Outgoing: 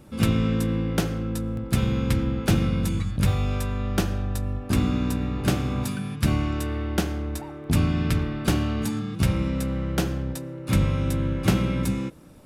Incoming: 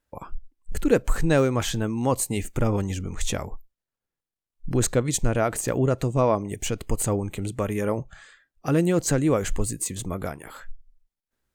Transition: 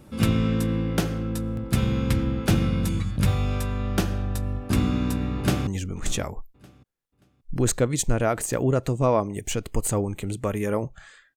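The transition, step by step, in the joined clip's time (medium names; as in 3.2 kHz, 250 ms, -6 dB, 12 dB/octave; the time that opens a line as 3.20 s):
outgoing
5.38–5.67 s: echo throw 580 ms, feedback 25%, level -15.5 dB
5.67 s: go over to incoming from 2.82 s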